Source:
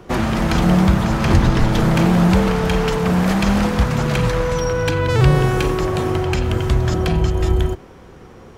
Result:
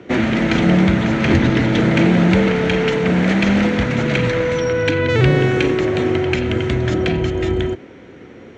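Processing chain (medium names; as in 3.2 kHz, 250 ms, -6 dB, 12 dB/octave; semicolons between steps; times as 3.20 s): cabinet simulation 120–5900 Hz, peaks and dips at 160 Hz -5 dB, 280 Hz +6 dB, 800 Hz -6 dB, 1.1 kHz -10 dB, 2.1 kHz +6 dB, 5 kHz -10 dB; trim +3 dB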